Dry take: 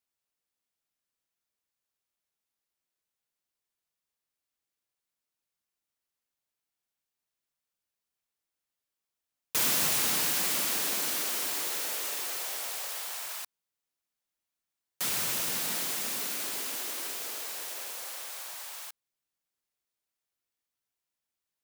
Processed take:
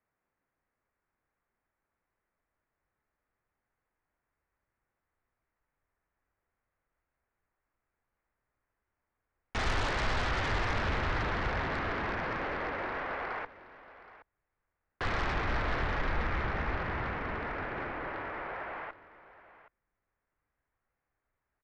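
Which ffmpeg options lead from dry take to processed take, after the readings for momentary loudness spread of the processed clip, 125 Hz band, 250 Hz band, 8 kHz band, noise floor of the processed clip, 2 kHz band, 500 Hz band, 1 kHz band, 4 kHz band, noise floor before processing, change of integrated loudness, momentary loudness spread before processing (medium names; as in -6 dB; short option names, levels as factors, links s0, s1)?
9 LU, +15.0 dB, +6.0 dB, -24.5 dB, under -85 dBFS, +4.5 dB, +7.0 dB, +7.5 dB, -8.5 dB, under -85 dBFS, -4.5 dB, 13 LU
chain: -filter_complex "[0:a]highpass=f=270:t=q:w=0.5412,highpass=f=270:t=q:w=1.307,lowpass=f=2200:t=q:w=0.5176,lowpass=f=2200:t=q:w=0.7071,lowpass=f=2200:t=q:w=1.932,afreqshift=-210,lowshelf=f=110:g=6,asplit=2[s0][s1];[s1]aeval=exprs='0.0531*sin(PI/2*4.47*val(0)/0.0531)':c=same,volume=0.398[s2];[s0][s2]amix=inputs=2:normalize=0,aecho=1:1:772:0.141,asubboost=boost=4:cutoff=81"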